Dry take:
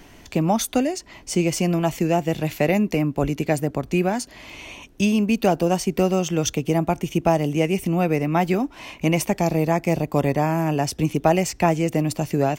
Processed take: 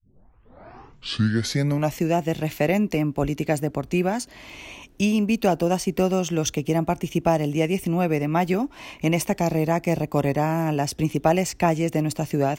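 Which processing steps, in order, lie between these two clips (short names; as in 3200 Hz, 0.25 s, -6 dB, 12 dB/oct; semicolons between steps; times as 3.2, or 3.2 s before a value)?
tape start at the beginning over 2.02 s; gain -1.5 dB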